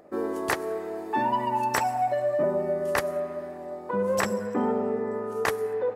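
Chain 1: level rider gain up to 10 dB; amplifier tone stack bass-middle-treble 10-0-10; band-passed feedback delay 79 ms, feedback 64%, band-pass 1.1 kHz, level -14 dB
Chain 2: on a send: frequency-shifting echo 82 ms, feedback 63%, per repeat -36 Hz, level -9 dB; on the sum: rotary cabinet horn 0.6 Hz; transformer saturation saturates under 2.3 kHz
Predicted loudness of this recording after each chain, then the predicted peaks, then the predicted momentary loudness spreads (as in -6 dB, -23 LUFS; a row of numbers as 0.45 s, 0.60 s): -29.5 LUFS, -31.0 LUFS; -7.0 dBFS, -9.0 dBFS; 14 LU, 6 LU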